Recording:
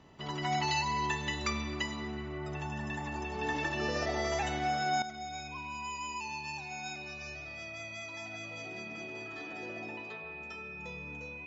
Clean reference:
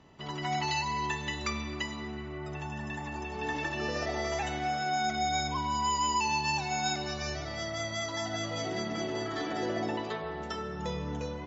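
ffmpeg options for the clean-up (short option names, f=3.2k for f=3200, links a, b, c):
-af "bandreject=f=2.5k:w=30,asetnsamples=n=441:p=0,asendcmd='5.02 volume volume 11.5dB',volume=0dB"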